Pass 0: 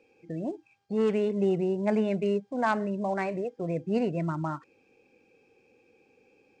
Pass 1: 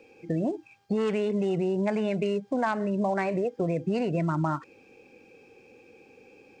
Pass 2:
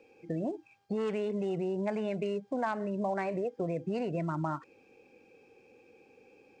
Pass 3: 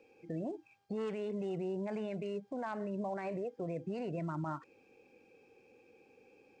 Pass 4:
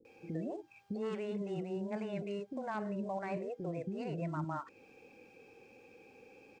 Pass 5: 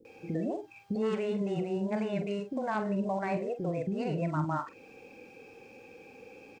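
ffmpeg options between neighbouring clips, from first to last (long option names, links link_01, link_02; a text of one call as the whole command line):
ffmpeg -i in.wav -filter_complex "[0:a]acrossover=split=710[link_01][link_02];[link_01]alimiter=level_in=1.5dB:limit=-24dB:level=0:latency=1,volume=-1.5dB[link_03];[link_03][link_02]amix=inputs=2:normalize=0,acompressor=threshold=-32dB:ratio=10,volume=9dB" out.wav
ffmpeg -i in.wav -af "equalizer=frequency=670:width=0.61:gain=3,volume=-7.5dB" out.wav
ffmpeg -i in.wav -af "alimiter=level_in=3.5dB:limit=-24dB:level=0:latency=1:release=22,volume=-3.5dB,volume=-3.5dB" out.wav
ffmpeg -i in.wav -filter_complex "[0:a]acompressor=threshold=-50dB:ratio=1.5,acrossover=split=380[link_01][link_02];[link_02]adelay=50[link_03];[link_01][link_03]amix=inputs=2:normalize=0,volume=6.5dB" out.wav
ffmpeg -i in.wav -filter_complex "[0:a]asplit=2[link_01][link_02];[link_02]adelay=46,volume=-10dB[link_03];[link_01][link_03]amix=inputs=2:normalize=0,volume=6.5dB" out.wav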